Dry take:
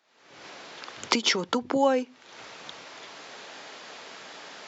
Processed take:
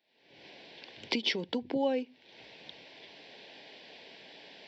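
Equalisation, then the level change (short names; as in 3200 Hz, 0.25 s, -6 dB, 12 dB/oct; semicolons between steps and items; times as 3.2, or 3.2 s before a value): fixed phaser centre 3000 Hz, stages 4; -4.5 dB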